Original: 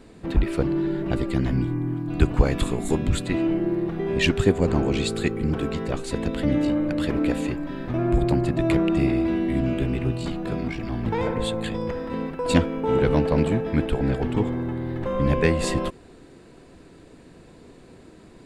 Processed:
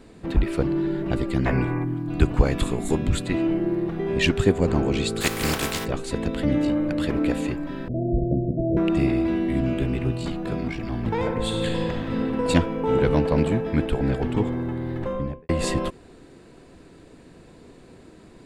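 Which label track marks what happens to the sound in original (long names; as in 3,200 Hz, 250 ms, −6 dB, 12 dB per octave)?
1.460000	1.840000	gain on a spectral selection 370–2,800 Hz +11 dB
5.200000	5.840000	compressing power law on the bin magnitudes exponent 0.39
7.880000	8.770000	Chebyshev low-pass with heavy ripple 690 Hz, ripple 3 dB
11.410000	12.460000	thrown reverb, RT60 2.9 s, DRR −1 dB
14.980000	15.490000	fade out and dull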